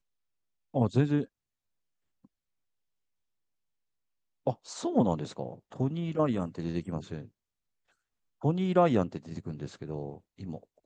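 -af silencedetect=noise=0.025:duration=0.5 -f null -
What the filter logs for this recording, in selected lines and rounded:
silence_start: 0.00
silence_end: 0.75 | silence_duration: 0.75
silence_start: 1.24
silence_end: 4.47 | silence_duration: 3.23
silence_start: 7.19
silence_end: 8.44 | silence_duration: 1.25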